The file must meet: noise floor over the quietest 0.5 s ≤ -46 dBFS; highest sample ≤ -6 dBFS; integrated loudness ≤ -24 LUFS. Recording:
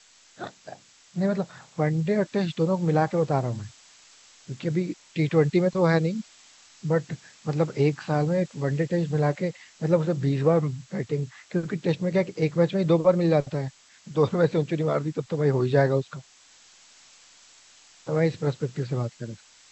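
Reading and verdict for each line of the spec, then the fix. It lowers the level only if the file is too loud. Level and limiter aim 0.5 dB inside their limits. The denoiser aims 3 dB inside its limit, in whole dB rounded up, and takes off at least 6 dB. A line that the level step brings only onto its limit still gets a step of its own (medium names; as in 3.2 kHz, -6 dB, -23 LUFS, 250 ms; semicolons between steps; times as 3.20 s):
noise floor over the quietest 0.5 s -55 dBFS: pass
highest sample -8.0 dBFS: pass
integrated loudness -25.5 LUFS: pass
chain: none needed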